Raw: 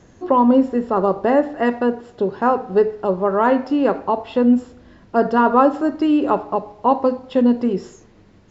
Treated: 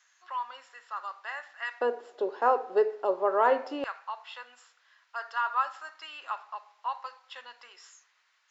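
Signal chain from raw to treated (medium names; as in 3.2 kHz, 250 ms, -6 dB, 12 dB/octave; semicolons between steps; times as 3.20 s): high-pass 1.3 kHz 24 dB/octave, from 1.81 s 420 Hz, from 3.84 s 1.2 kHz; trim -6 dB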